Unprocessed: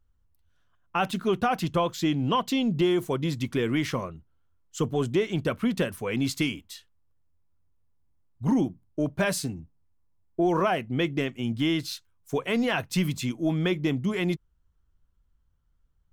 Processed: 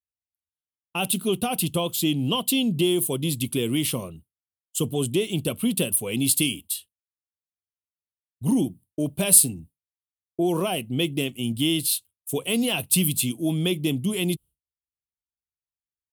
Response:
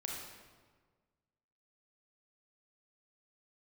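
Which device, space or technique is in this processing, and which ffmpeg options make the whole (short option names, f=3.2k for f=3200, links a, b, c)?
budget condenser microphone: -af "highpass=77,highshelf=f=7.8k:t=q:w=3:g=9.5,agate=range=-33dB:threshold=-43dB:ratio=3:detection=peak,firequalizer=gain_entry='entry(250,0);entry(1700,-15);entry(2800,7)':delay=0.05:min_phase=1,volume=2dB"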